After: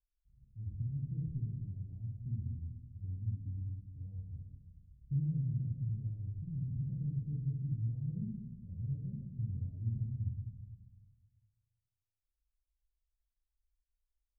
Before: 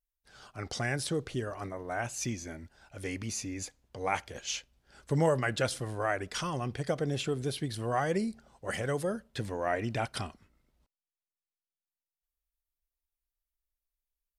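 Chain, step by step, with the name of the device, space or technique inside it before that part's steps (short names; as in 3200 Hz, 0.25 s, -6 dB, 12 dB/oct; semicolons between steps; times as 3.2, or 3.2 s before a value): club heard from the street (limiter -21 dBFS, peak gain reduction 7 dB; LPF 140 Hz 24 dB/oct; reverb RT60 1.4 s, pre-delay 11 ms, DRR -2.5 dB)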